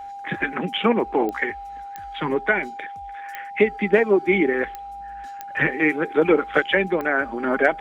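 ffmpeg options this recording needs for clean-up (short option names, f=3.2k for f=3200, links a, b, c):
-af "adeclick=t=4,bandreject=f=800:w=30"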